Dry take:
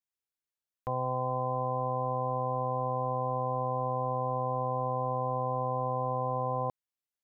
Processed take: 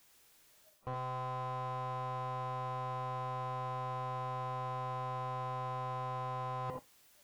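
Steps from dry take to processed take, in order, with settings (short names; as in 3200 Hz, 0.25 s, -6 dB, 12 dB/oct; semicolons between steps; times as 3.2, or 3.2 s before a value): zero-crossing step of -39 dBFS; spectral noise reduction 22 dB; reverse; compressor 8:1, threshold -39 dBFS, peak gain reduction 12.5 dB; reverse; non-linear reverb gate 0.1 s rising, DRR 8 dB; slew limiter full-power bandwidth 6.4 Hz; gain +5 dB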